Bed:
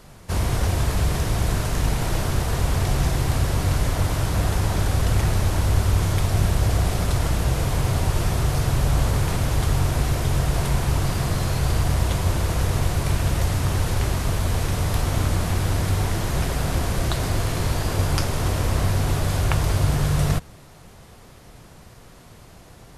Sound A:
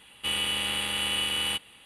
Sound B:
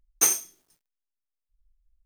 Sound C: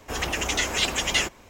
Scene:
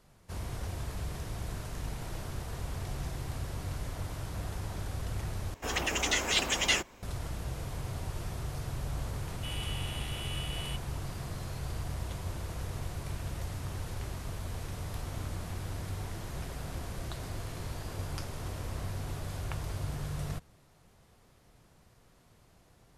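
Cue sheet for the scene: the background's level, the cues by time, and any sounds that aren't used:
bed −16 dB
0:05.54: overwrite with C −4 dB
0:09.19: mix in A −13.5 dB
not used: B

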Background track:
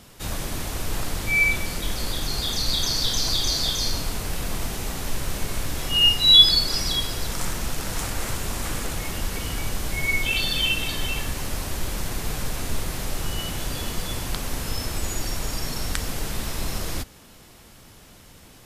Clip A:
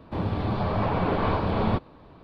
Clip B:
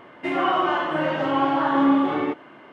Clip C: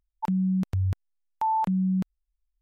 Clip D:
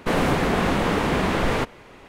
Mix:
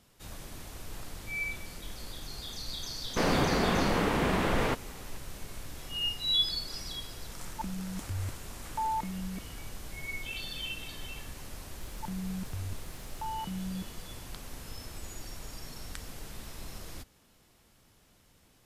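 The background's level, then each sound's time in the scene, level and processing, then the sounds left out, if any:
background track −15 dB
0:03.10: mix in D −6 dB
0:07.36: mix in C −9.5 dB + comb filter 3.2 ms
0:11.80: mix in C −12.5 dB + background raised ahead of every attack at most 38 dB per second
not used: A, B

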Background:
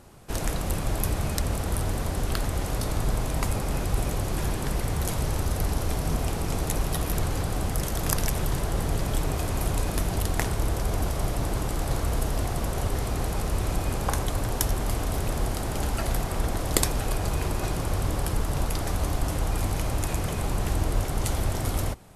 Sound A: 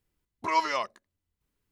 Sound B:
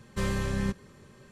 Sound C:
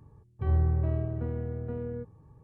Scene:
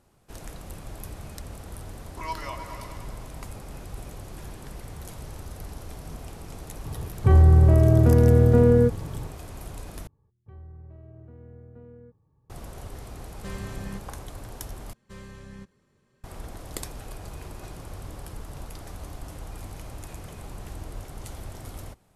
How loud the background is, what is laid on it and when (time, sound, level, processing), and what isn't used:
background −12.5 dB
0:01.73: mix in A −9 dB + echo whose low-pass opens from repeat to repeat 104 ms, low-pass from 400 Hz, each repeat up 2 octaves, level −3 dB
0:06.85: mix in C −7.5 dB + boost into a limiter +26.5 dB
0:10.07: overwrite with C −12 dB + brickwall limiter −26.5 dBFS
0:13.27: mix in B −8 dB
0:14.93: overwrite with B −14.5 dB

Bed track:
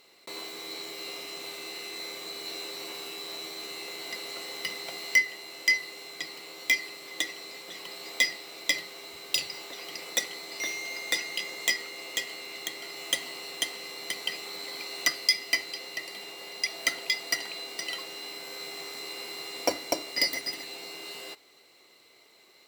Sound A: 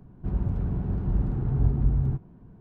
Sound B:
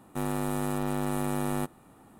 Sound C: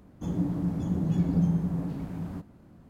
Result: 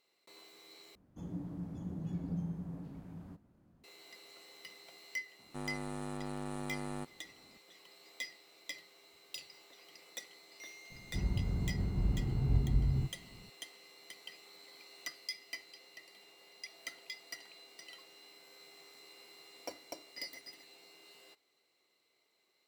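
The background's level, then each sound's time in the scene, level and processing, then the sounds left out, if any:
bed track −18 dB
0:00.95: overwrite with C −13.5 dB
0:05.39: mix in B −11 dB + downsampling to 22,050 Hz
0:10.90: mix in A −7 dB

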